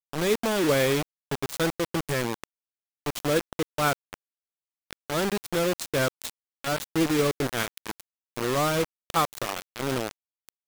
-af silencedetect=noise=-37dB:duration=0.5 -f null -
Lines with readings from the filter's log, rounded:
silence_start: 2.44
silence_end: 3.06 | silence_duration: 0.62
silence_start: 4.14
silence_end: 4.91 | silence_duration: 0.77